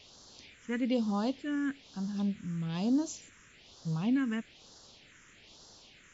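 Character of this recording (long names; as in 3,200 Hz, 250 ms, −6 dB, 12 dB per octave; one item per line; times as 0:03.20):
a quantiser's noise floor 8 bits, dither triangular
phaser sweep stages 4, 1.1 Hz, lowest notch 720–2,300 Hz
MP2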